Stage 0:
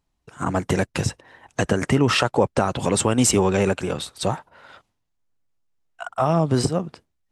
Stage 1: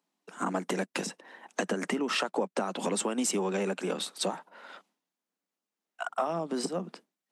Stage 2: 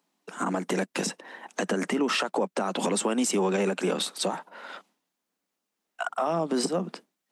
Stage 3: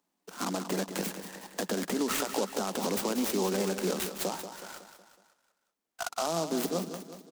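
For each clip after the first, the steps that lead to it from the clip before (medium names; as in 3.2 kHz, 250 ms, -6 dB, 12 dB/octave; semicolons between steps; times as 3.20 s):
compression 4:1, threshold -25 dBFS, peak gain reduction 11 dB; steep high-pass 180 Hz 72 dB/octave; trim -1.5 dB
peak limiter -23.5 dBFS, peak gain reduction 7 dB; trim +6.5 dB
on a send: feedback delay 185 ms, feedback 50%, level -10 dB; on the sum: delay time shaken by noise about 5.1 kHz, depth 0.079 ms; trim -4.5 dB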